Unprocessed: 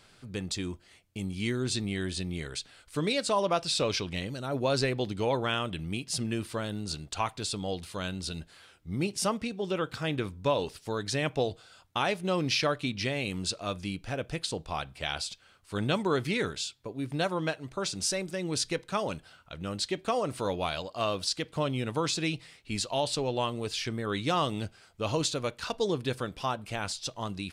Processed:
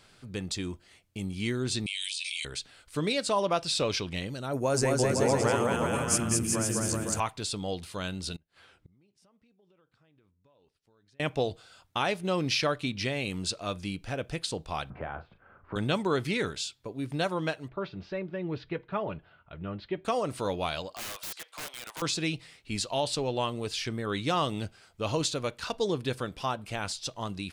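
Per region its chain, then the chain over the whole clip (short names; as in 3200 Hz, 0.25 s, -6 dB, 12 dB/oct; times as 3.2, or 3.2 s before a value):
1.86–2.45 Chebyshev band-pass 2300–10000 Hz, order 5 + fast leveller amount 100%
4.53–7.2 EQ curve 1600 Hz 0 dB, 2300 Hz -3 dB, 3900 Hz -15 dB, 6300 Hz +9 dB + bouncing-ball echo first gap 0.21 s, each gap 0.8×, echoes 5, each echo -2 dB
8.36–11.2 high shelf 5100 Hz -11.5 dB + compressor 12:1, threshold -32 dBFS + flipped gate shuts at -42 dBFS, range -28 dB
14.9–15.76 LPF 1500 Hz 24 dB/oct + doubler 37 ms -10 dB + three-band squash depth 70%
17.68–20.05 Bessel low-pass 2000 Hz, order 6 + notch comb 260 Hz
20.94–22.02 HPF 720 Hz 24 dB/oct + wrapped overs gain 32.5 dB
whole clip: dry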